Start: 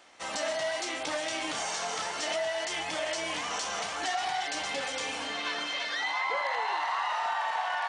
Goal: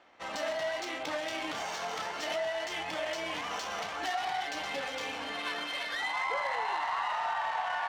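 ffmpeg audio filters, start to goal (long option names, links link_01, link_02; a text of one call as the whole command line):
ffmpeg -i in.wav -af "adynamicsmooth=sensitivity=5:basefreq=2900,volume=-1.5dB" out.wav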